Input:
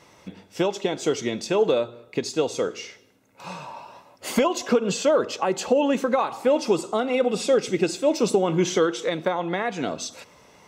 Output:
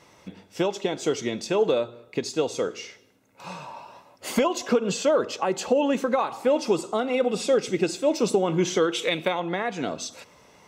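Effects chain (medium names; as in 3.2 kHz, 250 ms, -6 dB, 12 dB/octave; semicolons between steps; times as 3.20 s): 8.92–9.40 s: FFT filter 1.7 kHz 0 dB, 2.5 kHz +13 dB, 5.6 kHz +1 dB, 11 kHz +10 dB; trim -1.5 dB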